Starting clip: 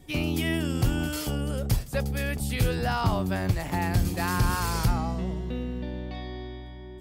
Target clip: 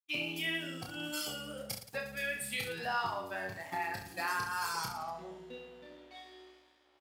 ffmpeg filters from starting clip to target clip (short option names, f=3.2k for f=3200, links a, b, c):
-af "aeval=exprs='sgn(val(0))*max(abs(val(0))-0.00891,0)':c=same,acompressor=threshold=-27dB:ratio=6,highpass=f=1.3k:p=1,afftdn=nr=14:nf=-40,aecho=1:1:30|67.5|114.4|173|246.2:0.631|0.398|0.251|0.158|0.1,volume=3dB"